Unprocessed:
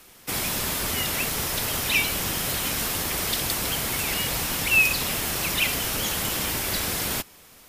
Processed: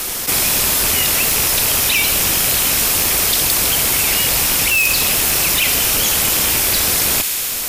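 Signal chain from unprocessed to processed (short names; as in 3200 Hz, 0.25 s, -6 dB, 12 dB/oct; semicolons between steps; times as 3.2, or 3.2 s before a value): rattling part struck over -34 dBFS, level -21 dBFS; low shelf 160 Hz +11 dB; in parallel at -7.5 dB: wrapped overs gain 11.5 dB; on the sum: tone controls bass -10 dB, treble +6 dB; on a send: thin delay 65 ms, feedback 79%, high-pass 1700 Hz, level -16 dB; on the sum: fast leveller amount 70%; gain -1.5 dB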